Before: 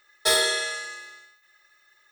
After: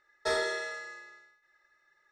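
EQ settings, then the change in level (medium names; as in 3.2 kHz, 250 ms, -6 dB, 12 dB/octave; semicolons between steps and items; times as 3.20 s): distance through air 140 m; peaking EQ 3.2 kHz -12 dB 0.81 oct; -3.5 dB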